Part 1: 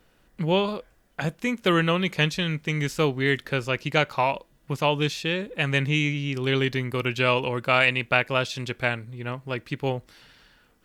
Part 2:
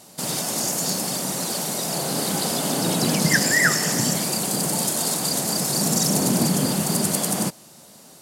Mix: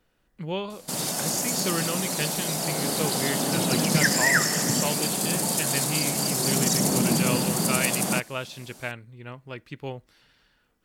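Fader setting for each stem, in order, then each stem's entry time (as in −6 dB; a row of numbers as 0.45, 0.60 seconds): −8.0, −2.5 decibels; 0.00, 0.70 seconds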